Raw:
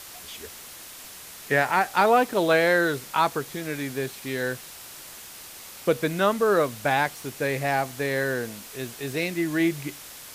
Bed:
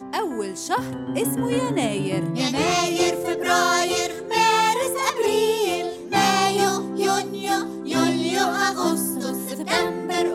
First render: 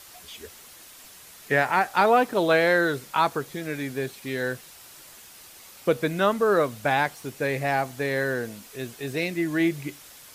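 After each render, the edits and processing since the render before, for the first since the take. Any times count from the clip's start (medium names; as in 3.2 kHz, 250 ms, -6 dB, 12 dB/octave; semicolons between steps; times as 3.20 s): noise reduction 6 dB, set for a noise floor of -43 dBFS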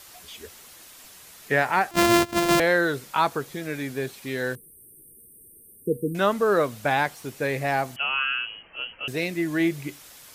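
1.91–2.60 s: sorted samples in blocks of 128 samples; 4.55–6.15 s: brick-wall FIR band-stop 500–8300 Hz; 7.96–9.08 s: frequency inversion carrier 3.1 kHz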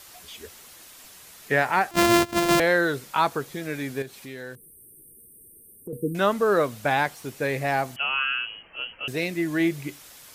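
4.02–5.93 s: compression 2:1, threshold -41 dBFS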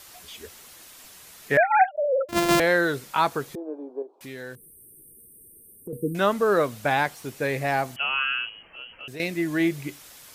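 1.57–2.29 s: formants replaced by sine waves; 3.55–4.21 s: elliptic band-pass 310–970 Hz; 8.49–9.20 s: compression 2:1, threshold -42 dBFS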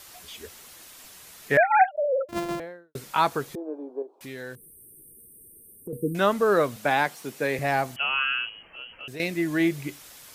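1.86–2.95 s: studio fade out; 6.76–7.59 s: high-pass 150 Hz 24 dB/octave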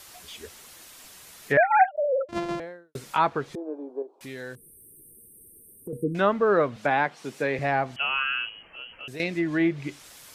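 low-pass that closes with the level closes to 2.5 kHz, closed at -20.5 dBFS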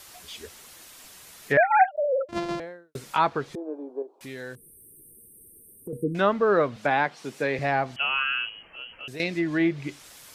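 dynamic bell 4.6 kHz, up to +4 dB, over -47 dBFS, Q 1.5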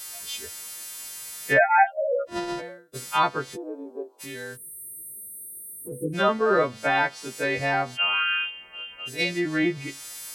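partials quantised in pitch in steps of 2 st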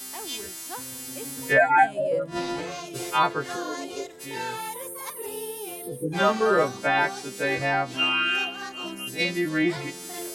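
add bed -15.5 dB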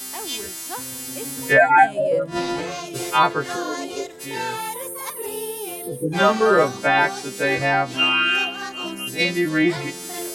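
trim +5 dB; peak limiter -3 dBFS, peak gain reduction 1 dB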